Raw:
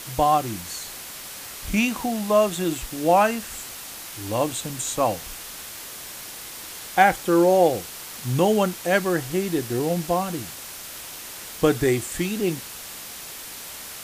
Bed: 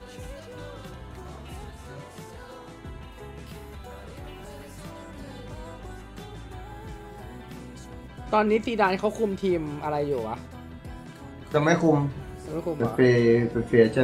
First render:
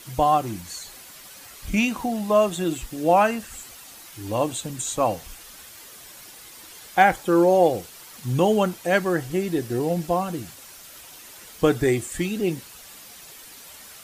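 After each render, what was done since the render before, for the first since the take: denoiser 9 dB, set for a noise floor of -38 dBFS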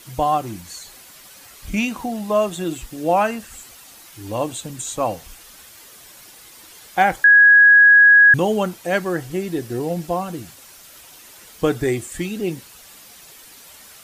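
7.24–8.34 bleep 1660 Hz -6.5 dBFS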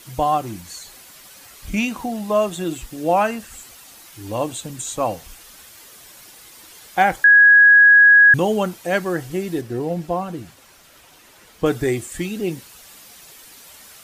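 9.61–11.66 high shelf 4200 Hz -9.5 dB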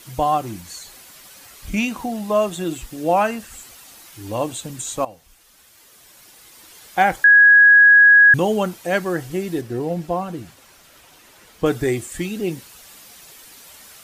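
5.05–7.07 fade in, from -16.5 dB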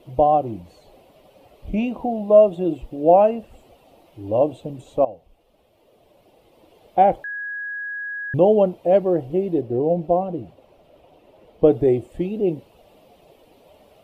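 EQ curve 230 Hz 0 dB, 620 Hz +8 dB, 1600 Hz -21 dB, 2800 Hz -10 dB, 6700 Hz -29 dB, 12000 Hz -24 dB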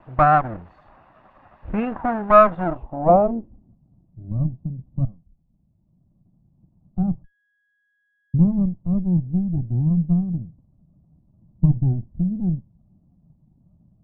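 minimum comb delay 1.1 ms; low-pass sweep 1600 Hz -> 170 Hz, 2.58–3.76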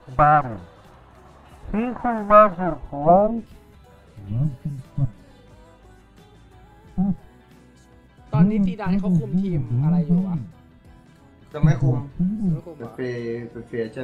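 add bed -9 dB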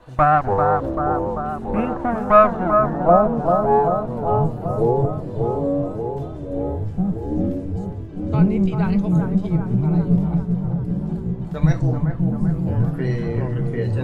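analogue delay 0.391 s, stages 4096, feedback 68%, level -5 dB; echoes that change speed 0.189 s, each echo -7 st, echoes 3, each echo -6 dB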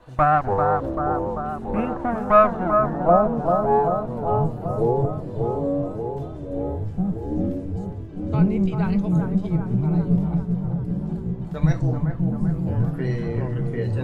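gain -2.5 dB

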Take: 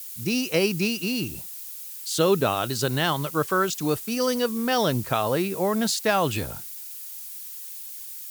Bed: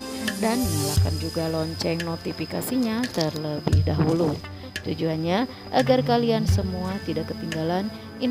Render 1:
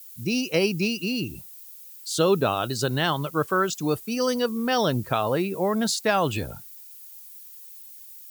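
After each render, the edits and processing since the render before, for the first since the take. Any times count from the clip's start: denoiser 10 dB, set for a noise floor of -38 dBFS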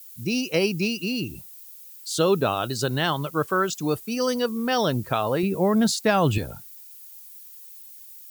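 5.43–6.38 low shelf 250 Hz +10 dB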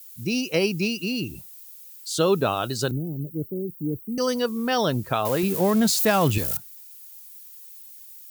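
2.91–4.18 inverse Chebyshev band-stop 1300–5600 Hz, stop band 70 dB; 5.25–6.57 switching spikes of -21.5 dBFS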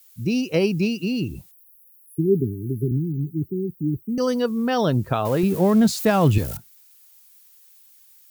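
1.51–4.04 spectral delete 420–10000 Hz; tilt -2 dB/oct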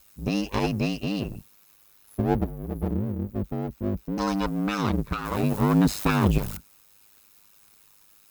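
minimum comb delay 0.78 ms; ring modulator 51 Hz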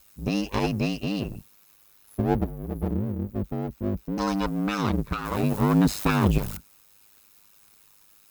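nothing audible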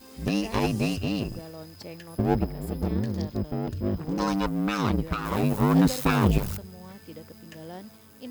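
add bed -16 dB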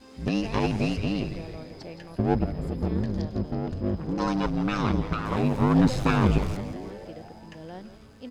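air absorption 78 m; frequency-shifting echo 0.167 s, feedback 62%, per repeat -150 Hz, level -11 dB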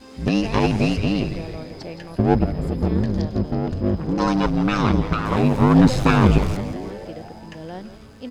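gain +6.5 dB

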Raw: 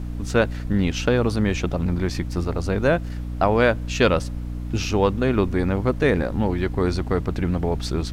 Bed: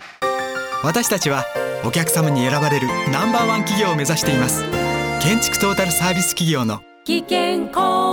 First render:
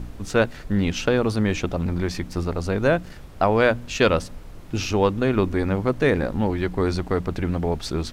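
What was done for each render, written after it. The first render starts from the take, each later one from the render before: de-hum 60 Hz, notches 5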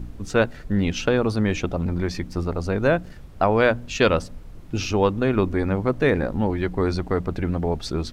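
denoiser 6 dB, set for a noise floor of -40 dBFS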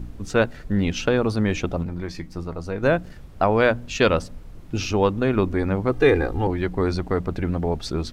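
1.83–2.83 resonator 160 Hz, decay 0.16 s; 5.91–6.47 comb 2.5 ms, depth 82%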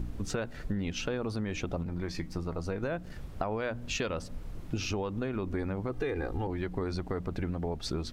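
limiter -13 dBFS, peak gain reduction 7 dB; compressor 6:1, threshold -30 dBFS, peak gain reduction 12 dB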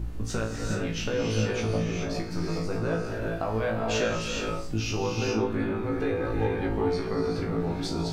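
flutter echo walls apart 3.1 m, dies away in 0.34 s; non-linear reverb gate 0.45 s rising, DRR 0 dB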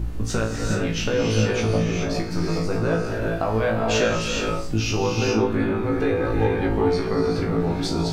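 gain +6 dB

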